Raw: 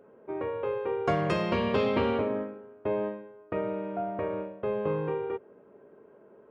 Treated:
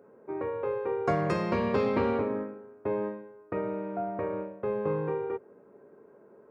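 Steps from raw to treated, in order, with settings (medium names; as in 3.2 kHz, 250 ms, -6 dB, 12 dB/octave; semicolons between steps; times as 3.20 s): high-pass 68 Hz; peaking EQ 3.1 kHz -11.5 dB 0.47 oct; band-stop 630 Hz, Q 19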